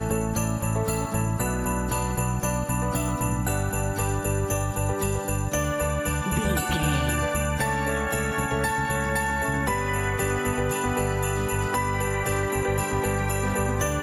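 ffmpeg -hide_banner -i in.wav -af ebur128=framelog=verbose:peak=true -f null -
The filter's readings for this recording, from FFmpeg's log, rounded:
Integrated loudness:
  I:         -25.6 LUFS
  Threshold: -35.6 LUFS
Loudness range:
  LRA:         1.2 LU
  Threshold: -45.5 LUFS
  LRA low:   -26.2 LUFS
  LRA high:  -24.9 LUFS
True peak:
  Peak:      -11.7 dBFS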